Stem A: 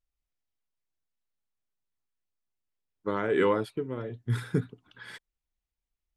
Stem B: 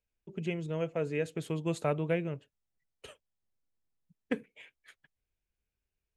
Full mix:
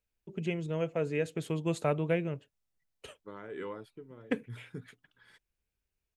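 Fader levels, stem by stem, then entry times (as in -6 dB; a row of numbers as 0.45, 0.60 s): -16.0, +1.0 dB; 0.20, 0.00 s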